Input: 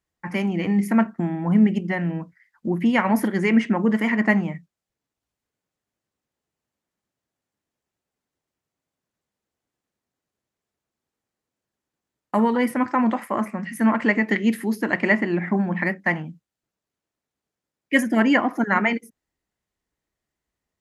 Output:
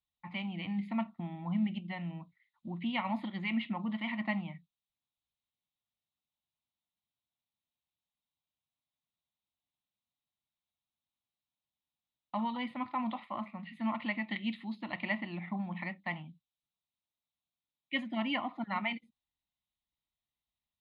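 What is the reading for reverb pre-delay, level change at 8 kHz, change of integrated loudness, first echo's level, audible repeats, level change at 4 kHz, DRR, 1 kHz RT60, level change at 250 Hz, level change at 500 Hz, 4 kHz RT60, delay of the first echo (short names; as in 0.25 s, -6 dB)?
none, under -35 dB, -15.0 dB, none, none, -5.5 dB, none, none, -15.5 dB, -20.0 dB, none, none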